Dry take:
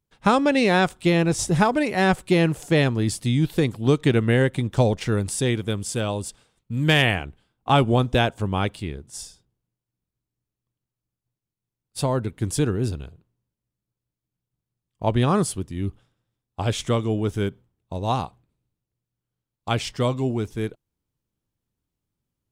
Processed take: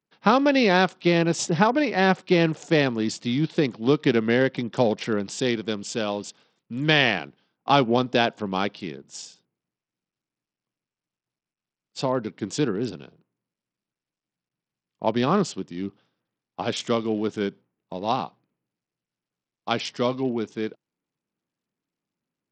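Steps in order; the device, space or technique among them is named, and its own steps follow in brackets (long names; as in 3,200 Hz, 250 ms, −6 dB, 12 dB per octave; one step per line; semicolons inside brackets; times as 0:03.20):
Bluetooth headset (high-pass filter 170 Hz 24 dB per octave; downsampling to 16,000 Hz; SBC 64 kbit/s 44,100 Hz)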